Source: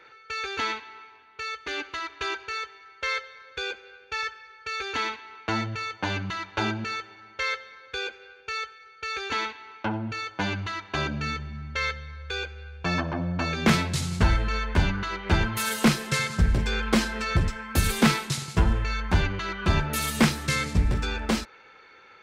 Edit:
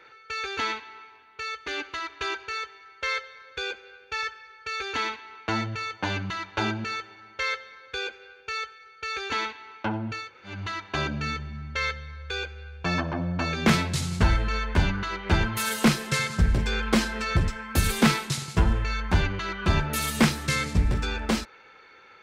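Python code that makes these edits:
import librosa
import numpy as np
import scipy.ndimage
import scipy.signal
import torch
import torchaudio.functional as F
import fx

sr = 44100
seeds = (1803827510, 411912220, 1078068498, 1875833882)

y = fx.edit(x, sr, fx.room_tone_fill(start_s=10.25, length_s=0.3, crossfade_s=0.24), tone=tone)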